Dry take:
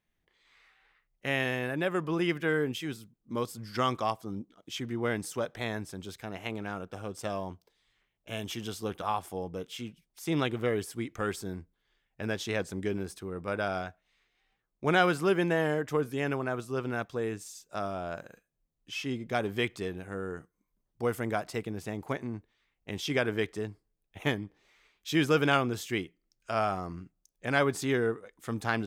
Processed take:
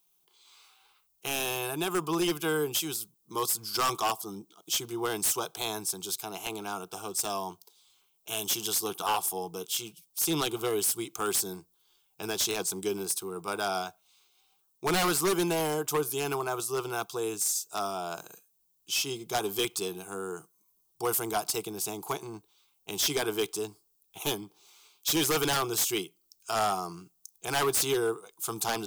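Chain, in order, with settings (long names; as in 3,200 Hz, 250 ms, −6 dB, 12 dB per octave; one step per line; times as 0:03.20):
RIAA equalisation recording
phaser with its sweep stopped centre 370 Hz, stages 8
wave folding −27.5 dBFS
level +7 dB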